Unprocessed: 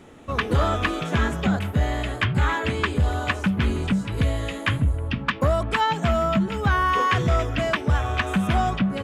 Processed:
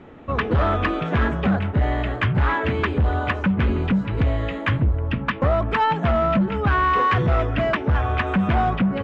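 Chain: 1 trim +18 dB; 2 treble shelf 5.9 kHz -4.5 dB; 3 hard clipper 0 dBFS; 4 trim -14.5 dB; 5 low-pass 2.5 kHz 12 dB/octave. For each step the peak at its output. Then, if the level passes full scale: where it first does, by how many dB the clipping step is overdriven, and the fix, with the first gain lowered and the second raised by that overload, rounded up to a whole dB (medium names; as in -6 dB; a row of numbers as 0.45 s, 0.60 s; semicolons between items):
+7.0 dBFS, +7.0 dBFS, 0.0 dBFS, -14.5 dBFS, -14.0 dBFS; step 1, 7.0 dB; step 1 +11 dB, step 4 -7.5 dB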